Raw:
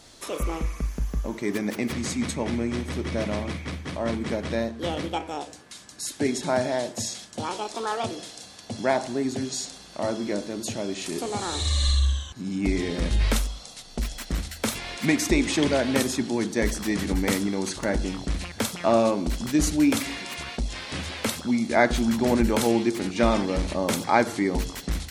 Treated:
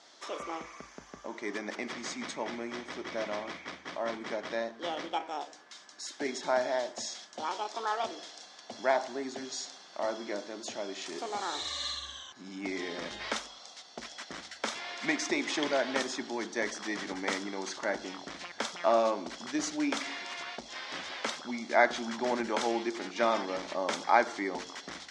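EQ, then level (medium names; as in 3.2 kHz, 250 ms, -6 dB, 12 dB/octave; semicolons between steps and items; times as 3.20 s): cabinet simulation 480–5900 Hz, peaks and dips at 480 Hz -5 dB, 2.6 kHz -6 dB, 4.2 kHz -5 dB; -2.0 dB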